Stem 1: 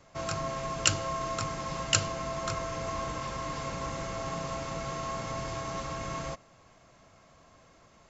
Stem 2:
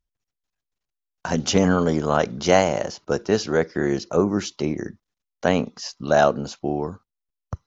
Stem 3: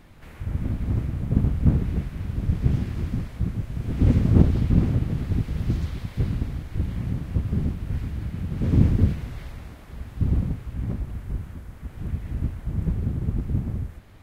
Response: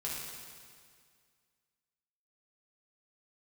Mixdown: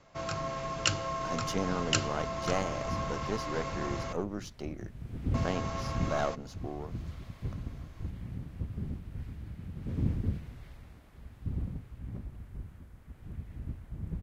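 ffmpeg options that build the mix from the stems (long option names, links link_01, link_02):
-filter_complex "[0:a]lowpass=5900,volume=-1.5dB,asplit=3[link_01][link_02][link_03];[link_01]atrim=end=4.13,asetpts=PTS-STARTPTS,afade=type=out:start_time=4.126:duration=0.004:curve=hsin[link_04];[link_02]atrim=start=4.13:end=5.34,asetpts=PTS-STARTPTS,volume=0[link_05];[link_03]atrim=start=5.34,asetpts=PTS-STARTPTS,afade=type=in:duration=0.004:curve=hsin[link_06];[link_04][link_05][link_06]concat=n=3:v=0:a=1[link_07];[1:a]aeval=exprs='if(lt(val(0),0),0.447*val(0),val(0))':channel_layout=same,volume=-13dB,asplit=2[link_08][link_09];[2:a]adelay=1250,volume=-12.5dB[link_10];[link_09]apad=whole_len=682356[link_11];[link_10][link_11]sidechaincompress=threshold=-39dB:ratio=8:attack=42:release=569[link_12];[link_07][link_08][link_12]amix=inputs=3:normalize=0"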